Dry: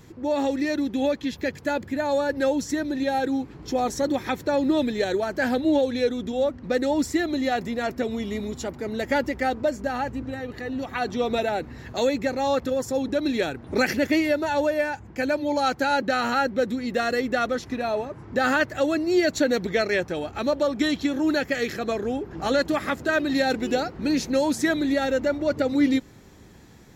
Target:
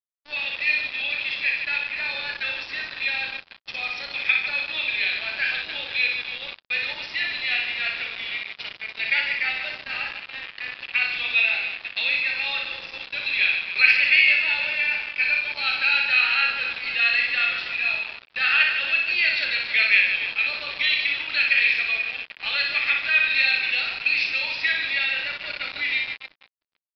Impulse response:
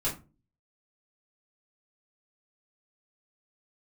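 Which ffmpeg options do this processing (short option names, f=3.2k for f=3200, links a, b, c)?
-filter_complex "[0:a]highpass=f=2.5k:t=q:w=8.2,asplit=2[a][b];[b]adelay=36,volume=-8.5dB[c];[a][c]amix=inputs=2:normalize=0,aecho=1:1:60|150|285|487.5|791.2:0.631|0.398|0.251|0.158|0.1,asplit=2[d][e];[1:a]atrim=start_sample=2205,lowpass=5.5k[f];[e][f]afir=irnorm=-1:irlink=0,volume=-16.5dB[g];[d][g]amix=inputs=2:normalize=0,acrusher=bits=4:mix=0:aa=0.5,aresample=11025,aresample=44100"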